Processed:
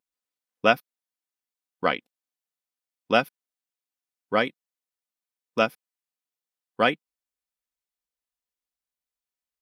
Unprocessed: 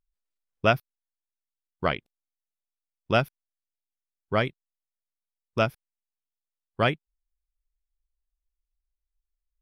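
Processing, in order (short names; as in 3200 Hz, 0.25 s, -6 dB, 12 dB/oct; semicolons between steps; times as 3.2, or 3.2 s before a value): HPF 220 Hz 12 dB/oct; comb 4 ms, depth 44%; gain +2 dB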